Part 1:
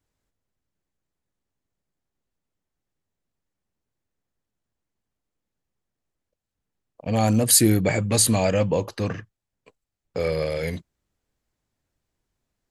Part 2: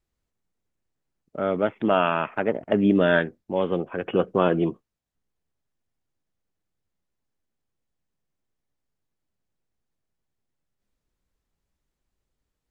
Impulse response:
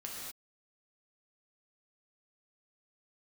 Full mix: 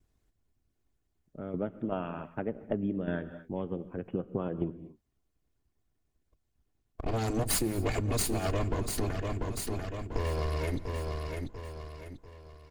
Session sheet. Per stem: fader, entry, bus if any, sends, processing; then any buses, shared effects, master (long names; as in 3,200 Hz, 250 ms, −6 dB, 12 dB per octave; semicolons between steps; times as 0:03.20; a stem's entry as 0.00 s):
+2.5 dB, 0.00 s, send −15 dB, echo send −10 dB, lower of the sound and its delayed copy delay 2.8 ms
−7.5 dB, 0.00 s, send −11 dB, no echo send, spectral tilt −2.5 dB per octave; shaped tremolo saw down 2.6 Hz, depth 50%; expander for the loud parts 1.5 to 1, over −31 dBFS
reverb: on, pre-delay 3 ms
echo: repeating echo 692 ms, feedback 38%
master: harmonic and percussive parts rebalanced harmonic −7 dB; low-shelf EQ 270 Hz +12 dB; downward compressor 4 to 1, threshold −29 dBFS, peak gain reduction 15.5 dB